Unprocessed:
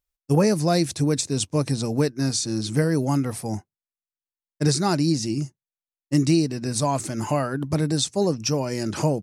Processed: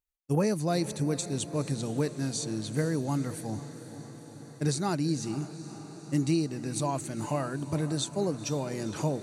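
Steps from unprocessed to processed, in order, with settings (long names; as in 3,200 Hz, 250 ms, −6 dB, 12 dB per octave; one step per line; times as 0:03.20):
notch filter 5,200 Hz, Q 5.4
on a send: feedback delay with all-pass diffusion 482 ms, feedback 68%, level −13.5 dB
on the sum: level −7.5 dB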